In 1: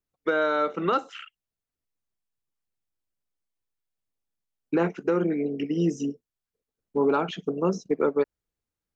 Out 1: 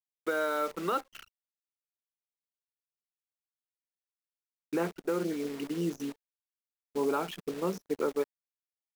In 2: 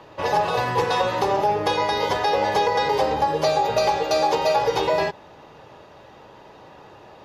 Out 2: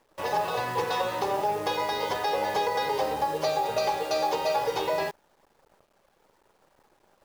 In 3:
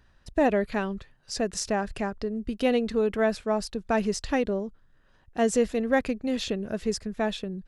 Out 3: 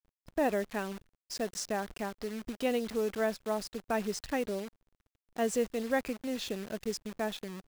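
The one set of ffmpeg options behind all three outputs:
-af "anlmdn=0.398,acrusher=bits=7:dc=4:mix=0:aa=0.000001,lowshelf=f=150:g=-7,volume=0.501"

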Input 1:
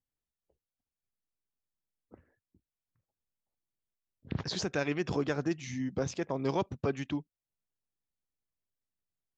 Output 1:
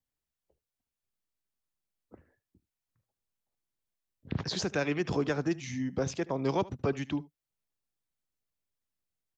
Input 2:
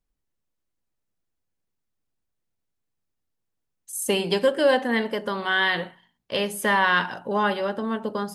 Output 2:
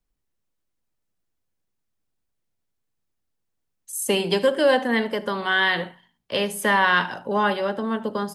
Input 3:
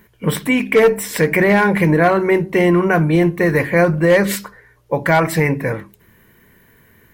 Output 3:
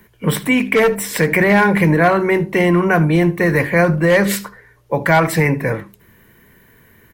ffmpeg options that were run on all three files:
-filter_complex "[0:a]aecho=1:1:75:0.0944,acrossover=split=280|540|6200[s0][s1][s2][s3];[s1]alimiter=limit=0.1:level=0:latency=1[s4];[s0][s4][s2][s3]amix=inputs=4:normalize=0,volume=1.19"

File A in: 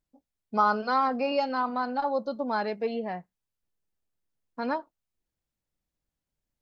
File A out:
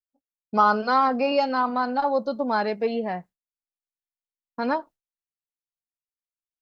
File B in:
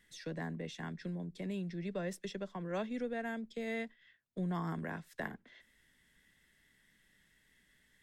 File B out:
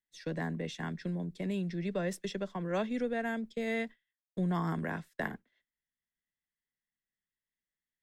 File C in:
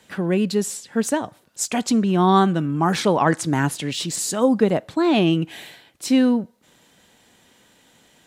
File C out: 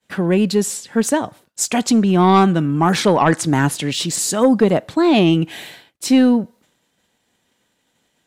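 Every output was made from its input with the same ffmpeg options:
-af "agate=range=0.0224:threshold=0.00562:ratio=3:detection=peak,aeval=exprs='0.708*sin(PI/2*1.41*val(0)/0.708)':c=same,volume=0.794"

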